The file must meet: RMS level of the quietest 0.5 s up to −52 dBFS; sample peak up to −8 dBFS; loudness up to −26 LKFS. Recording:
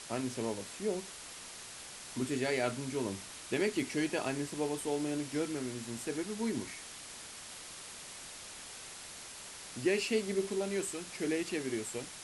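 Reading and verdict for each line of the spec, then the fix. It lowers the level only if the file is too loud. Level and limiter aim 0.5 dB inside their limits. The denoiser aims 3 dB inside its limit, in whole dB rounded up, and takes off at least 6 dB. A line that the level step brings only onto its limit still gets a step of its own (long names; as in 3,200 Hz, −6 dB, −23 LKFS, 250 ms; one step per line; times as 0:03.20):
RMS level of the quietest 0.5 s −48 dBFS: out of spec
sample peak −18.5 dBFS: in spec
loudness −37.0 LKFS: in spec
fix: broadband denoise 7 dB, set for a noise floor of −48 dBFS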